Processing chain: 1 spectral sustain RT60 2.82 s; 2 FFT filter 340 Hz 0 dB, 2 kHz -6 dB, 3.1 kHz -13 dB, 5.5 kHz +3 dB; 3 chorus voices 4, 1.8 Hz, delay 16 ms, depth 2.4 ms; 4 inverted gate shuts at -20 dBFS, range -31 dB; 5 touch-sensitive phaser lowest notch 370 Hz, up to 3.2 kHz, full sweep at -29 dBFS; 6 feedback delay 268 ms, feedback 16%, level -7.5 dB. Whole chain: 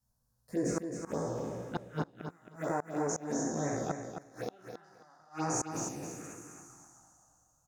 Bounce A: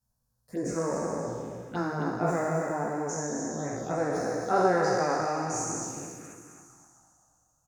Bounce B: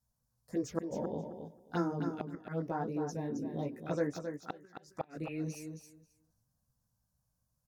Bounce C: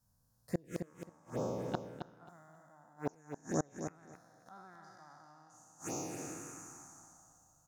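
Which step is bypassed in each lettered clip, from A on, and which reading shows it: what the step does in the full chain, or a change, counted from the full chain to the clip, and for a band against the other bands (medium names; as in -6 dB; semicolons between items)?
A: 4, momentary loudness spread change -3 LU; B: 1, 8 kHz band -12.5 dB; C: 3, crest factor change +7.5 dB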